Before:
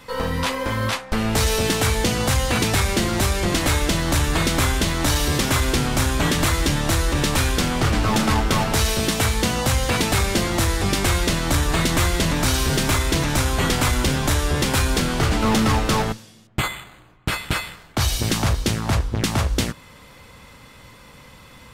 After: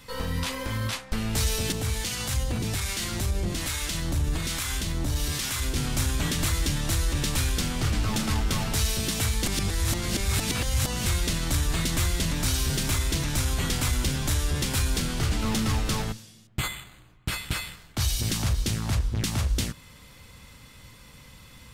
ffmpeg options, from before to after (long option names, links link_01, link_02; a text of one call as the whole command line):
ffmpeg -i in.wav -filter_complex "[0:a]asettb=1/sr,asplit=3[link_01][link_02][link_03];[link_01]atrim=end=1.724[link_04];[link_02]atrim=start=1.72:end=5.76,asetpts=PTS-STARTPTS,afade=type=in:duration=0.004:curve=qsin,afade=type=out:start_time=4.036:duration=0.004:curve=qsin,acrossover=split=830[link_05][link_06];[link_05]aeval=exprs='val(0)*(1-0.7/2+0.7/2*cos(2*PI*1.2*n/s))':channel_layout=same[link_07];[link_06]aeval=exprs='val(0)*(1-0.7/2-0.7/2*cos(2*PI*1.2*n/s))':channel_layout=same[link_08];[link_07][link_08]amix=inputs=2:normalize=0[link_09];[link_03]atrim=start=5.756[link_10];[link_04][link_09]acrossfade=duration=0.004:curve1=hsin:curve2=qsin[link_11];[link_11][link_10]acrossfade=duration=0.004:curve1=qsin:curve2=hsin,asplit=3[link_12][link_13][link_14];[link_12]atrim=end=9.462[link_15];[link_13]atrim=start=9.458:end=11.062,asetpts=PTS-STARTPTS,areverse[link_16];[link_14]atrim=start=11.058[link_17];[link_15][link_16]acrossfade=duration=0.004:curve1=hsin:curve2=hsin[link_18];[link_18][link_17]acrossfade=duration=0.004:curve1=hsin:curve2=hsin,alimiter=limit=-16.5dB:level=0:latency=1,equalizer=frequency=720:width=0.33:gain=-9.5" out.wav